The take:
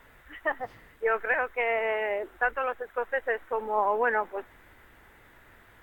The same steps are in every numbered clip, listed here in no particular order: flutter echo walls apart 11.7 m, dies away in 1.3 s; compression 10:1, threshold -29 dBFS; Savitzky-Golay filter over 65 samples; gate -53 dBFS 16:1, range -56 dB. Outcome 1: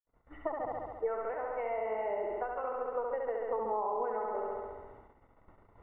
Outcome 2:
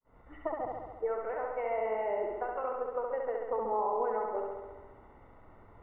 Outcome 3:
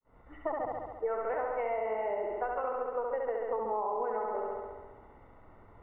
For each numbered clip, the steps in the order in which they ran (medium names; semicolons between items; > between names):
flutter echo > compression > Savitzky-Golay filter > gate; compression > flutter echo > gate > Savitzky-Golay filter; flutter echo > gate > Savitzky-Golay filter > compression